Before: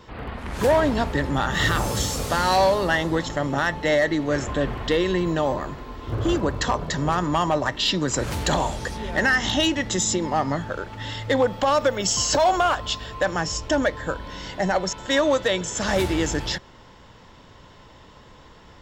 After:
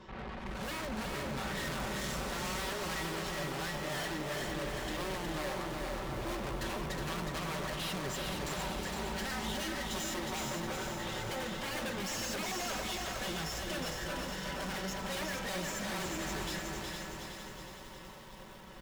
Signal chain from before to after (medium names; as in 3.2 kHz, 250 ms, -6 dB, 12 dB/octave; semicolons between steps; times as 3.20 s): low-pass 4 kHz 6 dB/octave; comb 5.3 ms, depth 98%; integer overflow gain 12 dB; flange 0.17 Hz, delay 8.7 ms, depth 1.8 ms, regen +80%; valve stage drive 39 dB, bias 0.55; feedback delay 365 ms, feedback 57%, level -4.5 dB; bit-crushed delay 460 ms, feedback 55%, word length 9-bit, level -4.5 dB